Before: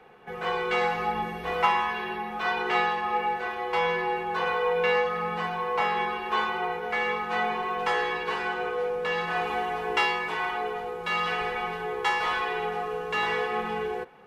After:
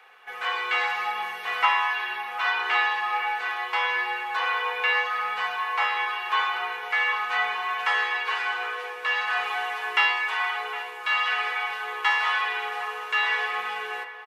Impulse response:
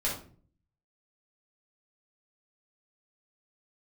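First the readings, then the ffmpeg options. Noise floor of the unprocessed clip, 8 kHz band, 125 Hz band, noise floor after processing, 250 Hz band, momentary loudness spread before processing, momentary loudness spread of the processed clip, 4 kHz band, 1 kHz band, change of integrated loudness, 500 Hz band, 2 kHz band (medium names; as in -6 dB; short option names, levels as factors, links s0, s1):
-36 dBFS, no reading, under -25 dB, -38 dBFS, under -15 dB, 6 LU, 7 LU, +5.0 dB, +0.5 dB, +2.5 dB, -11.0 dB, +5.5 dB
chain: -filter_complex "[0:a]highpass=1300,asplit=2[s0][s1];[1:a]atrim=start_sample=2205[s2];[s1][s2]afir=irnorm=-1:irlink=0,volume=0.168[s3];[s0][s3]amix=inputs=2:normalize=0,acrossover=split=3500[s4][s5];[s5]acompressor=threshold=0.00398:ratio=4:attack=1:release=60[s6];[s4][s6]amix=inputs=2:normalize=0,asplit=2[s7][s8];[s8]adelay=758,volume=0.251,highshelf=f=4000:g=-17.1[s9];[s7][s9]amix=inputs=2:normalize=0,volume=1.88"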